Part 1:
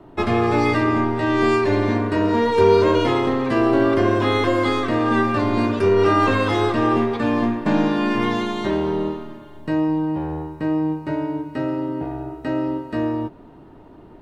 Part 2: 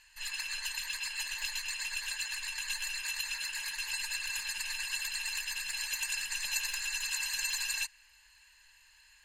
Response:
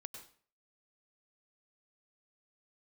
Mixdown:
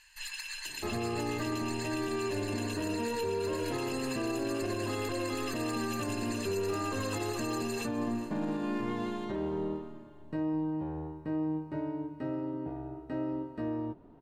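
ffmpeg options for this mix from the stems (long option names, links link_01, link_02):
-filter_complex "[0:a]tiltshelf=frequency=1300:gain=4,adelay=650,volume=-14.5dB[link_01];[1:a]acompressor=threshold=-38dB:ratio=6,volume=1dB,asplit=2[link_02][link_03];[link_03]volume=-16.5dB,aecho=0:1:411|822|1233|1644|2055|2466:1|0.43|0.185|0.0795|0.0342|0.0147[link_04];[link_01][link_02][link_04]amix=inputs=3:normalize=0,alimiter=level_in=1dB:limit=-24dB:level=0:latency=1:release=58,volume=-1dB"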